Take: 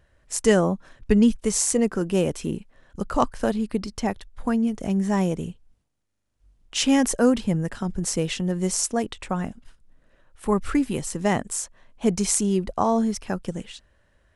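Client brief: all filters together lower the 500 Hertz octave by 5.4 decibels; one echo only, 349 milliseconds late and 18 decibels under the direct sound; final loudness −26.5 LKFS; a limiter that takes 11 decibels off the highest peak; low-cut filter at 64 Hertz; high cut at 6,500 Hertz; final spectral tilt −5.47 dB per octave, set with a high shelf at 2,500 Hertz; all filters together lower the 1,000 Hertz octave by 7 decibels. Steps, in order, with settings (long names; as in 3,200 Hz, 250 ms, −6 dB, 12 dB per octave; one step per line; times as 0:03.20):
high-pass filter 64 Hz
low-pass filter 6,500 Hz
parametric band 500 Hz −5 dB
parametric band 1,000 Hz −6.5 dB
high-shelf EQ 2,500 Hz −5.5 dB
brickwall limiter −20 dBFS
single-tap delay 349 ms −18 dB
level +4 dB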